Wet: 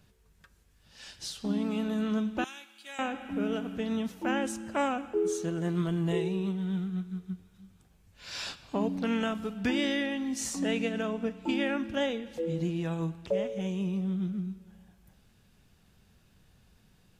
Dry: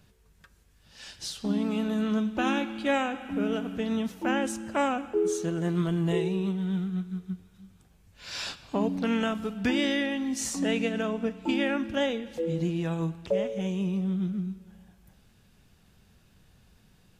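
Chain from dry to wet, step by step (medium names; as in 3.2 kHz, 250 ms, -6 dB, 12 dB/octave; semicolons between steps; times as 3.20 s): 2.44–2.99 s: differentiator; trim -2.5 dB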